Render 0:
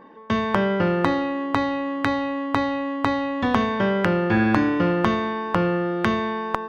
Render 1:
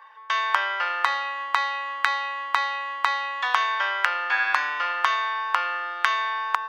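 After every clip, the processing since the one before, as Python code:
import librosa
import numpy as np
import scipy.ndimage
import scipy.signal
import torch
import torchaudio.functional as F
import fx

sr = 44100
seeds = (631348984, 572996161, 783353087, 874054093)

y = scipy.signal.sosfilt(scipy.signal.butter(4, 1000.0, 'highpass', fs=sr, output='sos'), x)
y = y * 10.0 ** (4.5 / 20.0)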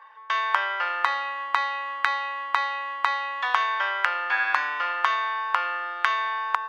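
y = fx.high_shelf(x, sr, hz=4500.0, db=-8.5)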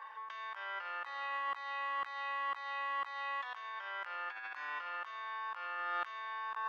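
y = fx.over_compress(x, sr, threshold_db=-35.0, ratio=-1.0)
y = y * 10.0 ** (-7.0 / 20.0)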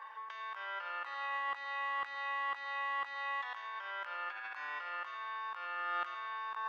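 y = fx.echo_feedback(x, sr, ms=114, feedback_pct=53, wet_db=-12.5)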